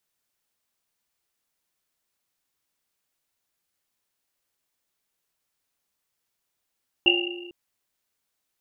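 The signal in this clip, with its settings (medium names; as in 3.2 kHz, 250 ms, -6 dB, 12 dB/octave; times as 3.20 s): Risset drum length 0.45 s, pitch 350 Hz, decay 1.52 s, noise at 2.8 kHz, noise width 160 Hz, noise 60%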